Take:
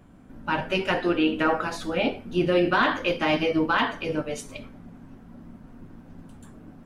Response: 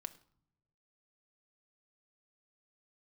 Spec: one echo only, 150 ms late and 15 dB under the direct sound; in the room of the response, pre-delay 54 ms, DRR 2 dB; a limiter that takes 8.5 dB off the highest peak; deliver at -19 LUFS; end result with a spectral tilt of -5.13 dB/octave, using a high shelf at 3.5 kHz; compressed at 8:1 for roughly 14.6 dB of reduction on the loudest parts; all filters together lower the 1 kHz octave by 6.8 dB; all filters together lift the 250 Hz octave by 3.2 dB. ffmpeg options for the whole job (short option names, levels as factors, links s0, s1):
-filter_complex "[0:a]equalizer=f=250:t=o:g=5.5,equalizer=f=1000:t=o:g=-8.5,highshelf=f=3500:g=-6,acompressor=threshold=0.0251:ratio=8,alimiter=level_in=2:limit=0.0631:level=0:latency=1,volume=0.501,aecho=1:1:150:0.178,asplit=2[s0][s1];[1:a]atrim=start_sample=2205,adelay=54[s2];[s1][s2]afir=irnorm=-1:irlink=0,volume=1.26[s3];[s0][s3]amix=inputs=2:normalize=0,volume=8.41"